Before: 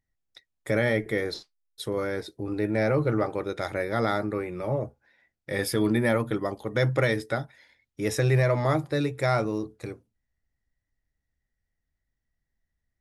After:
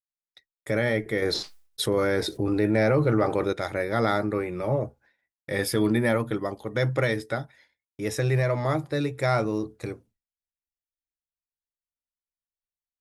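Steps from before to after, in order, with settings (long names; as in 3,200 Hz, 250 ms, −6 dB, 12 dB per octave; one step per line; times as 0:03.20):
speech leveller within 5 dB 2 s
downward expander −52 dBFS
0:01.22–0:03.53: envelope flattener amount 50%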